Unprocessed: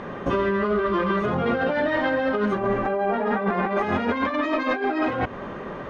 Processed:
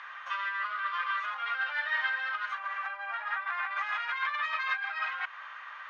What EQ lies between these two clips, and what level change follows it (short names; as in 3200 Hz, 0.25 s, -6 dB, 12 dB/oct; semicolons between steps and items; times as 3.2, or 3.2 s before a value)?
inverse Chebyshev high-pass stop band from 370 Hz, stop band 60 dB; air absorption 100 m; 0.0 dB